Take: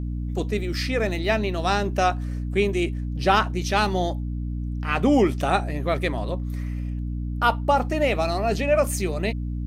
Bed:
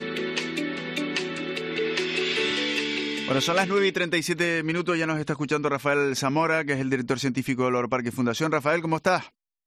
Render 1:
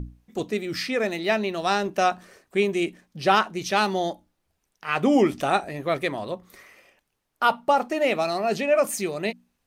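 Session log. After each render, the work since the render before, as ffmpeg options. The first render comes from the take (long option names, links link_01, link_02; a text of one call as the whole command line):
ffmpeg -i in.wav -af "bandreject=frequency=60:width_type=h:width=6,bandreject=frequency=120:width_type=h:width=6,bandreject=frequency=180:width_type=h:width=6,bandreject=frequency=240:width_type=h:width=6,bandreject=frequency=300:width_type=h:width=6" out.wav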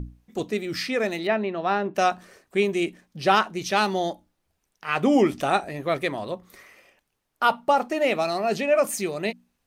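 ffmpeg -i in.wav -filter_complex "[0:a]asettb=1/sr,asplit=3[link_01][link_02][link_03];[link_01]atrim=end=1.274[link_04];[link_02]atrim=start=1.27:end=1.95,asetpts=PTS-STARTPTS,afade=type=in:duration=0.004:curve=qsin,afade=type=out:start_time=0.676:duration=0.004:curve=qsin,highpass=110,lowpass=2100[link_05];[link_03]atrim=start=1.946[link_06];[link_04][link_05]acrossfade=duration=0.004:curve1=hsin:curve2=qsin[link_07];[link_07][link_06]acrossfade=duration=0.004:curve1=qsin:curve2=hsin" out.wav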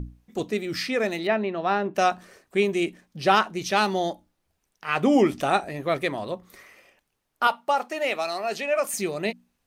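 ffmpeg -i in.wav -filter_complex "[0:a]asettb=1/sr,asplit=3[link_01][link_02][link_03];[link_01]atrim=end=7.474[link_04];[link_02]atrim=start=7.47:end=8.94,asetpts=PTS-STARTPTS,afade=type=in:duration=0.004:curve=qsin,afade=type=out:start_time=1.466:duration=0.004:curve=qsin,highpass=frequency=770:poles=1[link_05];[link_03]atrim=start=8.936[link_06];[link_04][link_05]acrossfade=duration=0.004:curve1=hsin:curve2=qsin[link_07];[link_07][link_06]acrossfade=duration=0.004:curve1=qsin:curve2=hsin" out.wav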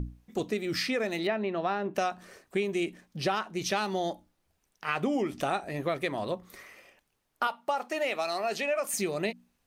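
ffmpeg -i in.wav -af "acompressor=threshold=-26dB:ratio=6" out.wav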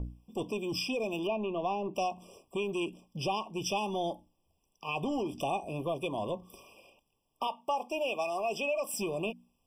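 ffmpeg -i in.wav -filter_complex "[0:a]acrossover=split=840[link_01][link_02];[link_01]asoftclip=type=tanh:threshold=-29.5dB[link_03];[link_03][link_02]amix=inputs=2:normalize=0,afftfilt=real='re*eq(mod(floor(b*sr/1024/1200),2),0)':imag='im*eq(mod(floor(b*sr/1024/1200),2),0)':win_size=1024:overlap=0.75" out.wav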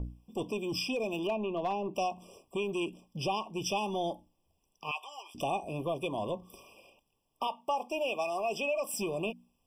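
ffmpeg -i in.wav -filter_complex "[0:a]asettb=1/sr,asplit=3[link_01][link_02][link_03];[link_01]atrim=end=0.964[link_04];[link_02]atrim=start=0.96:end=1.73,asetpts=PTS-STARTPTS,afade=type=in:duration=0.004:curve=qsin,afade=type=out:start_time=0.766:duration=0.004:curve=qsin,asoftclip=type=hard:threshold=-25.5dB[link_05];[link_03]atrim=start=1.726[link_06];[link_04][link_05]acrossfade=duration=0.004:curve1=hsin:curve2=qsin[link_07];[link_07][link_06]acrossfade=duration=0.004:curve1=qsin:curve2=hsin,asettb=1/sr,asplit=3[link_08][link_09][link_10];[link_08]atrim=end=4.914[link_11];[link_09]atrim=start=4.91:end=5.35,asetpts=PTS-STARTPTS,afade=type=in:duration=0.004:curve=qsin,afade=type=out:start_time=0.436:duration=0.004:curve=qsin,highpass=frequency=930:width=0.5412,highpass=frequency=930:width=1.3066[link_12];[link_10]atrim=start=5.346[link_13];[link_11][link_12]acrossfade=duration=0.004:curve1=hsin:curve2=qsin[link_14];[link_14][link_13]acrossfade=duration=0.004:curve1=qsin:curve2=hsin" out.wav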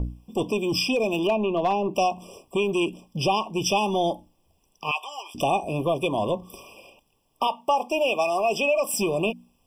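ffmpeg -i in.wav -af "volume=9.5dB" out.wav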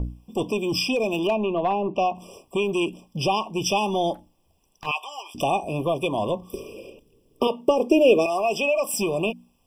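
ffmpeg -i in.wav -filter_complex "[0:a]asettb=1/sr,asplit=3[link_01][link_02][link_03];[link_01]atrim=end=1.544[link_04];[link_02]atrim=start=1.54:end=2.15,asetpts=PTS-STARTPTS,afade=type=in:duration=0.004:curve=qsin,afade=type=out:start_time=0.606:duration=0.004:curve=qsin,lowpass=2900[link_05];[link_03]atrim=start=2.146[link_06];[link_04][link_05]acrossfade=duration=0.004:curve1=hsin:curve2=qsin[link_07];[link_07][link_06]acrossfade=duration=0.004:curve1=qsin:curve2=hsin,asplit=3[link_08][link_09][link_10];[link_08]afade=type=out:start_time=4.13:duration=0.02[link_11];[link_09]aeval=exprs='clip(val(0),-1,0.00891)':channel_layout=same,afade=type=in:start_time=4.13:duration=0.02,afade=type=out:start_time=4.85:duration=0.02[link_12];[link_10]afade=type=in:start_time=4.85:duration=0.02[link_13];[link_11][link_12][link_13]amix=inputs=3:normalize=0,asettb=1/sr,asplit=3[link_14][link_15][link_16];[link_14]atrim=end=6.534[link_17];[link_15]atrim=start=6.53:end=8.26,asetpts=PTS-STARTPTS,afade=type=in:duration=0.004:curve=qsin,afade=type=out:start_time=1.726:duration=0.004:curve=qsin,lowshelf=frequency=590:width_type=q:width=3:gain=10[link_18];[link_16]atrim=start=8.256[link_19];[link_17][link_18]acrossfade=duration=0.004:curve1=hsin:curve2=qsin[link_20];[link_20][link_19]acrossfade=duration=0.004:curve1=qsin:curve2=hsin" out.wav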